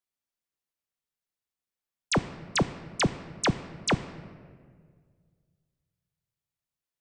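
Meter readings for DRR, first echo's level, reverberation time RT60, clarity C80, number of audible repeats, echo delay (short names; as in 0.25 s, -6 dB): 11.5 dB, none, 1.8 s, 15.0 dB, none, none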